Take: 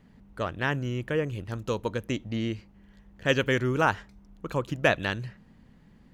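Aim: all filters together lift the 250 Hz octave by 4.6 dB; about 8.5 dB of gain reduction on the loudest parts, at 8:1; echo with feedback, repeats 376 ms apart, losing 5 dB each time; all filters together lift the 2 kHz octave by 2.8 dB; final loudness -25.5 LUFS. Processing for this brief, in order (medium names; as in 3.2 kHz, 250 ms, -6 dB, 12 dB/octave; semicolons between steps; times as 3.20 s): peaking EQ 250 Hz +5.5 dB; peaking EQ 2 kHz +3.5 dB; compression 8:1, threshold -24 dBFS; feedback delay 376 ms, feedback 56%, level -5 dB; trim +4.5 dB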